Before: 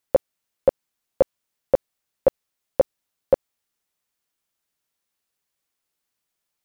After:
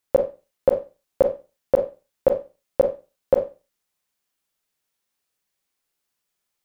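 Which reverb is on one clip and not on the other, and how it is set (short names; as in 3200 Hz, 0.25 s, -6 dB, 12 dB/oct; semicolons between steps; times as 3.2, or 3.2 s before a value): Schroeder reverb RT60 0.3 s, combs from 30 ms, DRR 4.5 dB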